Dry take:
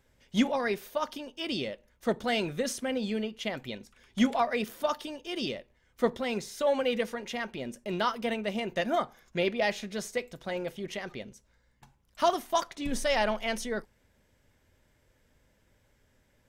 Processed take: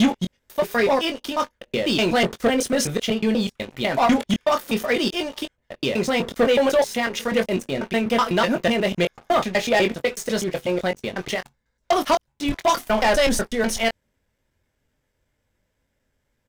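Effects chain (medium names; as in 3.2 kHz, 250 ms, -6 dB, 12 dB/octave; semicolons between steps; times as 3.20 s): slices played last to first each 124 ms, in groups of 4; doubling 22 ms -8 dB; waveshaping leveller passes 3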